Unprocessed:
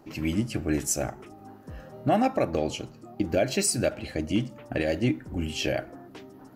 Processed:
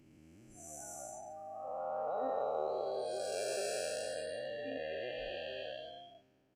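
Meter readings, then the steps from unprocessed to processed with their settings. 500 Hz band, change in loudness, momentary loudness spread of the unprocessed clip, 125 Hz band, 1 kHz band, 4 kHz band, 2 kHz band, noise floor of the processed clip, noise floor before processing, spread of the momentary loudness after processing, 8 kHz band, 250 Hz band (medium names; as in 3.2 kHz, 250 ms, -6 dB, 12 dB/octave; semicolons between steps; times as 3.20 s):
-8.0 dB, -12.0 dB, 20 LU, -29.0 dB, -8.0 dB, -11.0 dB, -11.5 dB, -68 dBFS, -50 dBFS, 12 LU, -14.5 dB, -25.0 dB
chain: spectral blur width 980 ms; spectral noise reduction 25 dB; resampled via 32 kHz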